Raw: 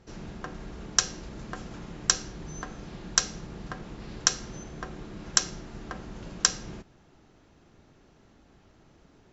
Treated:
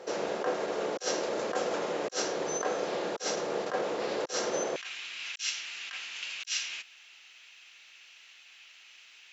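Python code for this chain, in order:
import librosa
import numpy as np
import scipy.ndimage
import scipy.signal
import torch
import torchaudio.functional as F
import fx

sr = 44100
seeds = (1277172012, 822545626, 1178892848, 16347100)

y = fx.over_compress(x, sr, threshold_db=-39.0, ratio=-0.5)
y = fx.highpass_res(y, sr, hz=fx.steps((0.0, 510.0), (4.76, 2600.0)), q=3.5)
y = y * librosa.db_to_amplitude(7.0)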